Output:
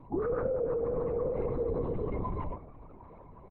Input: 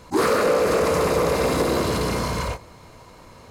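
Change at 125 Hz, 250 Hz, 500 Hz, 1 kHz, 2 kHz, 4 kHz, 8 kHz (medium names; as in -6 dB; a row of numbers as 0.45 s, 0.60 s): -9.0 dB, -12.5 dB, -10.0 dB, -16.5 dB, -25.0 dB, under -40 dB, under -40 dB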